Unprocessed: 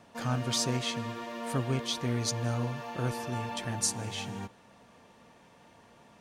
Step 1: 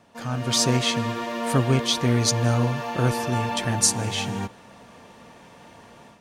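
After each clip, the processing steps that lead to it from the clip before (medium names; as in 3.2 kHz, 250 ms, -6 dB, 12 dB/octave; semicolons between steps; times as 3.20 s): level rider gain up to 10 dB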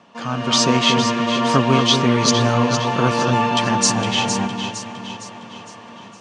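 cabinet simulation 150–6900 Hz, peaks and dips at 200 Hz +5 dB, 1.1 kHz +7 dB, 2.9 kHz +6 dB; echo whose repeats swap between lows and highs 230 ms, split 1.8 kHz, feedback 69%, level -5 dB; trim +4.5 dB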